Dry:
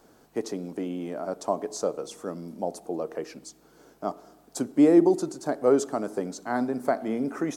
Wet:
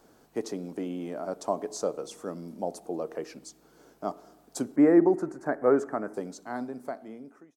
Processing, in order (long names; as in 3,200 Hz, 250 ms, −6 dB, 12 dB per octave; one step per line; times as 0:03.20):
fade-out on the ending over 1.87 s
0:04.76–0:06.14: high shelf with overshoot 2,500 Hz −11.5 dB, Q 3
level −2 dB